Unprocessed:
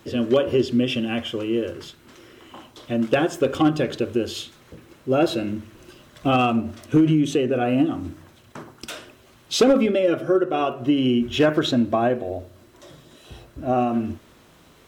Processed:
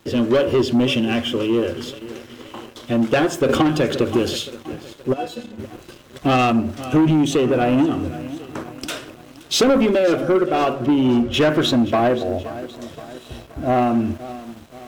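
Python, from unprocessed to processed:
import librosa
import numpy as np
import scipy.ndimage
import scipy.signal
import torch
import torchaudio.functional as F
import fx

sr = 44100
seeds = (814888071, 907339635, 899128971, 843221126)

y = fx.stiff_resonator(x, sr, f0_hz=240.0, decay_s=0.24, stiffness=0.002, at=(5.12, 5.58), fade=0.02)
y = fx.lowpass(y, sr, hz=1800.0, slope=6, at=(10.86, 11.34))
y = fx.echo_feedback(y, sr, ms=523, feedback_pct=55, wet_db=-18.0)
y = fx.leveller(y, sr, passes=2)
y = fx.band_squash(y, sr, depth_pct=100, at=(3.49, 4.36))
y = F.gain(torch.from_numpy(y), -1.5).numpy()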